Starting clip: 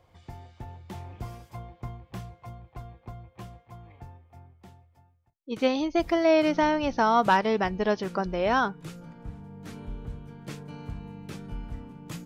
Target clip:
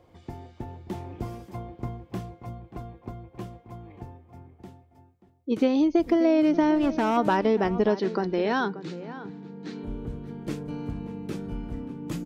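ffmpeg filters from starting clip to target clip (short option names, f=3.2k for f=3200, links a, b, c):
-filter_complex "[0:a]equalizer=f=310:t=o:w=1.5:g=11.5,acompressor=threshold=-19dB:ratio=4,asplit=3[a][b][c];[a]afade=t=out:st=6.75:d=0.02[d];[b]asoftclip=type=hard:threshold=-20dB,afade=t=in:st=6.75:d=0.02,afade=t=out:st=7.16:d=0.02[e];[c]afade=t=in:st=7.16:d=0.02[f];[d][e][f]amix=inputs=3:normalize=0,asettb=1/sr,asplit=3[g][h][i];[g]atrim=end=7.964[j];[h]atrim=start=7.96:end=9.84,asetpts=PTS-STARTPTS,afade=t=in:d=0.004:c=qsin,afade=t=out:st=1.876:d=0.004:c=qsin,highpass=f=170:w=0.5412,highpass=f=170:w=1.3066,equalizer=f=250:t=q:w=4:g=-5,equalizer=f=610:t=q:w=4:g=-9,equalizer=f=1.2k:t=q:w=4:g=-4,equalizer=f=1.8k:t=q:w=4:g=4,equalizer=f=4.1k:t=q:w=4:g=8,lowpass=f=6.3k:w=0.5412,lowpass=f=6.3k:w=1.3066[k];[i]atrim=start=9.836[l];[j][k]acrossfade=d=0.004:c1=hsin:c2=qsin[m];[m][l]acrossfade=d=0.004:c1=qsin:c2=hsin,asplit=2[n][o];[o]adelay=583.1,volume=-14dB,highshelf=f=4k:g=-13.1[p];[n][p]amix=inputs=2:normalize=0"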